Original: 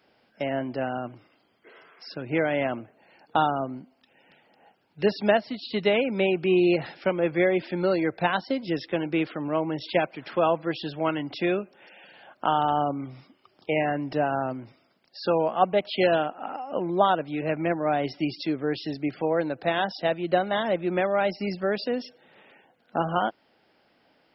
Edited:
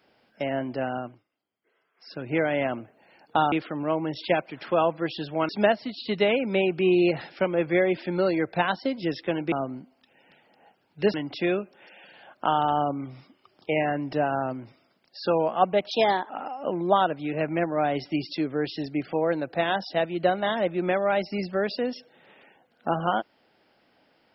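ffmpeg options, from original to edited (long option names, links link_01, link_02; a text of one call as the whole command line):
ffmpeg -i in.wav -filter_complex "[0:a]asplit=9[link_01][link_02][link_03][link_04][link_05][link_06][link_07][link_08][link_09];[link_01]atrim=end=1.24,asetpts=PTS-STARTPTS,afade=type=out:start_time=0.99:duration=0.25:silence=0.1[link_10];[link_02]atrim=start=1.24:end=1.94,asetpts=PTS-STARTPTS,volume=-20dB[link_11];[link_03]atrim=start=1.94:end=3.522,asetpts=PTS-STARTPTS,afade=type=in:duration=0.25:silence=0.1[link_12];[link_04]atrim=start=9.168:end=11.142[link_13];[link_05]atrim=start=5.138:end=9.172[link_14];[link_06]atrim=start=3.518:end=5.142[link_15];[link_07]atrim=start=11.138:end=15.914[link_16];[link_08]atrim=start=15.91:end=16.38,asetpts=PTS-STARTPTS,asetrate=53802,aresample=44100,atrim=end_sample=16989,asetpts=PTS-STARTPTS[link_17];[link_09]atrim=start=16.376[link_18];[link_10][link_11][link_12]concat=n=3:v=0:a=1[link_19];[link_19][link_13]acrossfade=duration=0.004:curve1=hsin:curve2=hsin[link_20];[link_20][link_14]acrossfade=duration=0.004:curve1=hsin:curve2=hsin[link_21];[link_21][link_15]acrossfade=duration=0.004:curve1=hsin:curve2=hsin[link_22];[link_22][link_16]acrossfade=duration=0.004:curve1=hsin:curve2=hsin[link_23];[link_23][link_17]acrossfade=duration=0.004:curve1=hsin:curve2=hsin[link_24];[link_24][link_18]acrossfade=duration=0.004:curve1=hsin:curve2=hsin" out.wav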